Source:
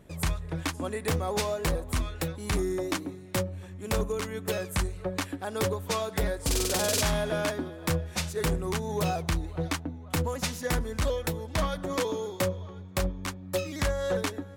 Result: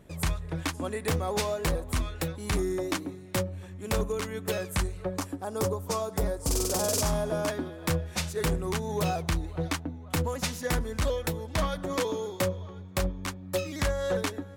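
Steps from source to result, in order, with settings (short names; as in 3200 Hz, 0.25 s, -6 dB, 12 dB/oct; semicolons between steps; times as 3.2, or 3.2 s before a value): 5.16–7.48 band shelf 2500 Hz -8.5 dB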